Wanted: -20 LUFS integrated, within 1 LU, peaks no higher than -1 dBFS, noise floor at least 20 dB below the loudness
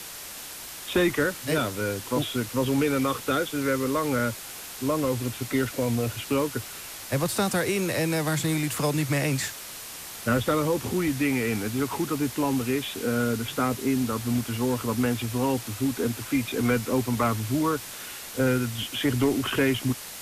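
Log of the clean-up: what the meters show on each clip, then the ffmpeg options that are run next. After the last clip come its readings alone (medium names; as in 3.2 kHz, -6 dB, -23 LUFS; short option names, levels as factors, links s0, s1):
noise floor -40 dBFS; noise floor target -47 dBFS; loudness -26.5 LUFS; peak level -12.0 dBFS; loudness target -20.0 LUFS
-> -af "afftdn=nr=7:nf=-40"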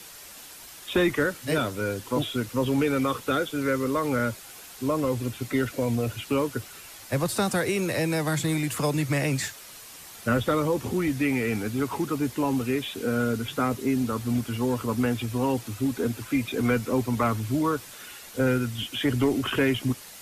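noise floor -45 dBFS; noise floor target -47 dBFS
-> -af "afftdn=nr=6:nf=-45"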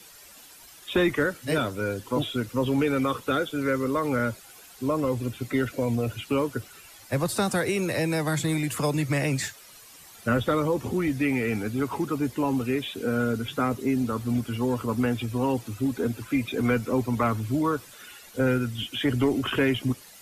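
noise floor -49 dBFS; loudness -27.0 LUFS; peak level -12.5 dBFS; loudness target -20.0 LUFS
-> -af "volume=2.24"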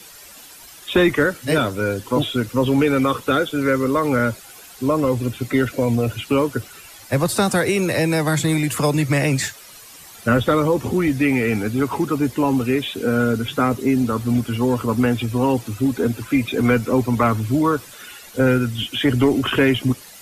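loudness -20.0 LUFS; peak level -5.5 dBFS; noise floor -42 dBFS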